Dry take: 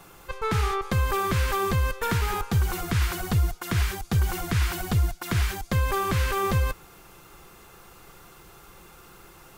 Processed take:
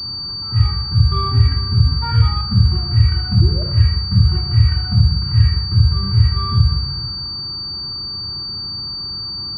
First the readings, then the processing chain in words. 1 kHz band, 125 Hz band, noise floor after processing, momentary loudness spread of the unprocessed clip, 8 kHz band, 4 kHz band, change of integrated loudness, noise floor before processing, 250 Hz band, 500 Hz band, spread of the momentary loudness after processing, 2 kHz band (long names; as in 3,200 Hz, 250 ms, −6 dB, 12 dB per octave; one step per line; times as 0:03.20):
−0.5 dB, +13.0 dB, −27 dBFS, 2 LU, below −15 dB, +17.5 dB, +9.5 dB, −51 dBFS, +6.0 dB, −5.5 dB, 8 LU, −5.5 dB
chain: compressor on every frequency bin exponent 0.2
soft clipping −9 dBFS, distortion −22 dB
high-frequency loss of the air 450 metres
on a send: delay that swaps between a low-pass and a high-pass 463 ms, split 950 Hz, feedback 69%, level −13.5 dB
on the sum: noise reduction from a noise print of the clip's start 23 dB
sound drawn into the spectrogram rise, 0:03.41–0:03.63, 320–650 Hz −31 dBFS
high-pass filter 68 Hz
rectangular room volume 2,300 cubic metres, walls furnished, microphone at 2.8 metres
low-pass that shuts in the quiet parts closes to 1,000 Hz, open at −16.5 dBFS
flat-topped bell 540 Hz −12 dB 1.1 octaves
boost into a limiter +8.5 dB
switching amplifier with a slow clock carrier 4,600 Hz
level −1 dB